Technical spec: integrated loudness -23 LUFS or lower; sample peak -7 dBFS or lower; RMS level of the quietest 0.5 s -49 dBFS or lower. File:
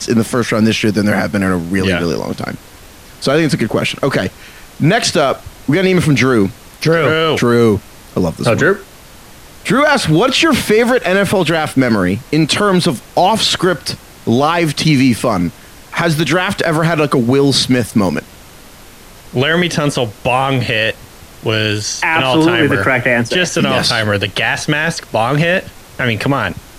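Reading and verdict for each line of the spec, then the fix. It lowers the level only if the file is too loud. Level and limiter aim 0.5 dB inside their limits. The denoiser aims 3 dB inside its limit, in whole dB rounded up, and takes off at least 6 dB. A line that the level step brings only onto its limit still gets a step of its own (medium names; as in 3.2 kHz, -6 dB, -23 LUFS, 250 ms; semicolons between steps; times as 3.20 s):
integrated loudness -14.0 LUFS: fail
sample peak -2.0 dBFS: fail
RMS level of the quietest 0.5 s -38 dBFS: fail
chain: noise reduction 6 dB, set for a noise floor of -38 dBFS; trim -9.5 dB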